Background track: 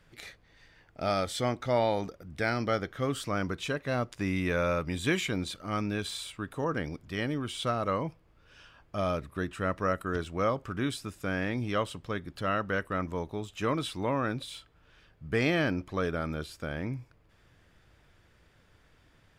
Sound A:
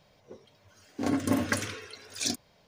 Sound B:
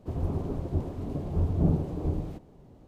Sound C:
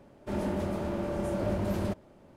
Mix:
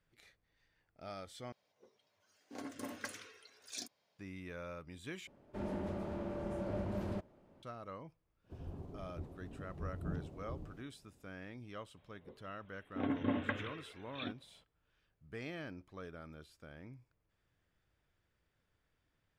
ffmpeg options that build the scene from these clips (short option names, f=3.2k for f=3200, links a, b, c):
-filter_complex "[1:a]asplit=2[a][b];[0:a]volume=-18dB[c];[a]highpass=f=420:p=1[d];[3:a]lowpass=f=3.5k:p=1[e];[b]aresample=8000,aresample=44100[f];[c]asplit=3[g][h][i];[g]atrim=end=1.524[j];[d]atrim=end=2.67,asetpts=PTS-STARTPTS,volume=-14dB[k];[h]atrim=start=4.186:end=5.274[l];[e]atrim=end=2.36,asetpts=PTS-STARTPTS,volume=-8.5dB[m];[i]atrim=start=7.626[n];[2:a]atrim=end=2.87,asetpts=PTS-STARTPTS,volume=-17dB,afade=t=in:d=0.004:c=hsin,afade=t=out:st=2.866:d=0.004:c=hsin,adelay=8440[o];[f]atrim=end=2.67,asetpts=PTS-STARTPTS,volume=-8dB,afade=t=in:d=0.004:c=hsin,afade=t=out:st=2.666:d=0.004:c=hsin,adelay=11970[p];[j][k]acrossfade=d=0.004:c1=hsin:c2=hsin[q];[q][l]acrossfade=d=0.004:c1=hsin:c2=hsin[r];[r][m]acrossfade=d=0.004:c1=hsin:c2=hsin[s];[s][n]acrossfade=d=0.004:c1=hsin:c2=hsin[t];[t][o][p]amix=inputs=3:normalize=0"